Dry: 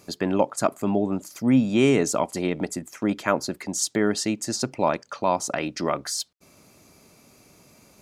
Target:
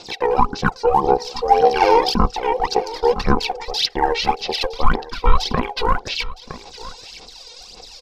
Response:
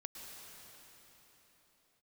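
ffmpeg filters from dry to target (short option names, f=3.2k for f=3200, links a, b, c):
-filter_complex "[0:a]bass=f=250:g=3,treble=f=4k:g=11,bandreject=f=60:t=h:w=6,bandreject=f=120:t=h:w=6,bandreject=f=180:t=h:w=6,bandreject=f=240:t=h:w=6,bandreject=f=300:t=h:w=6,bandreject=f=360:t=h:w=6,aeval=exprs='val(0)*sin(2*PI*900*n/s)':c=same,acrossover=split=3800[a][b];[a]asubboost=boost=5:cutoff=74[c];[b]acompressor=threshold=-46dB:ratio=10[d];[c][d]amix=inputs=2:normalize=0,lowpass=f=7.3k:t=q:w=3.1,aphaser=in_gain=1:out_gain=1:delay=1.5:decay=0.76:speed=1.8:type=sinusoidal,asetrate=30296,aresample=44100,atempo=1.45565,asplit=2[e][f];[f]aecho=0:1:963:0.133[g];[e][g]amix=inputs=2:normalize=0,alimiter=level_in=5.5dB:limit=-1dB:release=50:level=0:latency=1,volume=-1dB"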